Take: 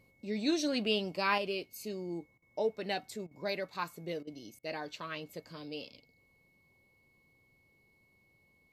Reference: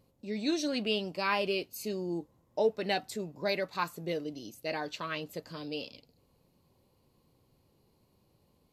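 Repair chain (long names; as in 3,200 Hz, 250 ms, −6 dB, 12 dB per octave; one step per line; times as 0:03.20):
notch filter 2,200 Hz, Q 30
repair the gap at 0:02.38/0:03.27/0:04.23/0:04.59, 40 ms
level 0 dB, from 0:01.38 +4.5 dB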